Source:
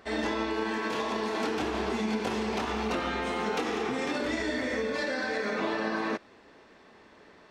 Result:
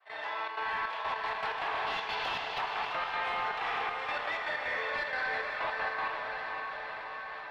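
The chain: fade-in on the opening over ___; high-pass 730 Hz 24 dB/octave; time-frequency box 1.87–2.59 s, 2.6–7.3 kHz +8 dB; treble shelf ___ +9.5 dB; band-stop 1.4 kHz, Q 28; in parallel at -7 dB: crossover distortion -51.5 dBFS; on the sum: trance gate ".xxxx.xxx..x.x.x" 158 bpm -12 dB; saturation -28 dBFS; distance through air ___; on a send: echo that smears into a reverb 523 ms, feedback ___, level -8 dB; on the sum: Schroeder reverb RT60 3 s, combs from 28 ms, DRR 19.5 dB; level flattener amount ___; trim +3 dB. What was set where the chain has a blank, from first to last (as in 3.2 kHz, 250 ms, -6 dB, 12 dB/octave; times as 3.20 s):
0.83 s, 4.4 kHz, 440 m, 50%, 50%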